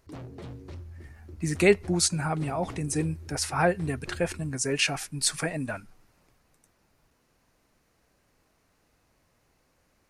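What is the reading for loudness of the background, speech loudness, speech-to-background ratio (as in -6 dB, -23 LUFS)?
-44.5 LUFS, -27.5 LUFS, 17.0 dB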